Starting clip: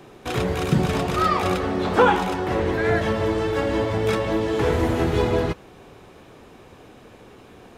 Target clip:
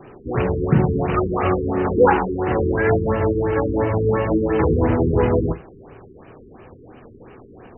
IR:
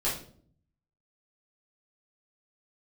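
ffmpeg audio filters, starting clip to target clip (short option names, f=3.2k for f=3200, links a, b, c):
-filter_complex "[0:a]asettb=1/sr,asplit=3[a][b][c];[a]atrim=end=4.294[d];[b]atrim=start=4.29:end=4.74,asetpts=PTS-STARTPTS,afade=t=in:d=0.004:c=qsin,afade=t=out:st=0.446:d=0.004:c=qsin,asplit=2[e][f];[f]adelay=13,volume=-3.5dB[g];[e][g]amix=inputs=2:normalize=0,atrim=end_sample=19845[h];[c]atrim=start=4.736[i];[d][h]acrossfade=d=0.004:c1=hsin:c2=qsin[j];[j][i]acrossfade=d=0.004:c1=qsin:c2=hsin,asplit=2[k][l];[1:a]atrim=start_sample=2205,afade=t=out:st=0.14:d=0.01,atrim=end_sample=6615[m];[l][m]afir=irnorm=-1:irlink=0,volume=-18.5dB[n];[k][n]amix=inputs=2:normalize=0,afftfilt=real='re*lt(b*sr/1024,440*pow(3100/440,0.5+0.5*sin(2*PI*2.9*pts/sr)))':imag='im*lt(b*sr/1024,440*pow(3100/440,0.5+0.5*sin(2*PI*2.9*pts/sr)))':win_size=1024:overlap=0.75,volume=2.5dB"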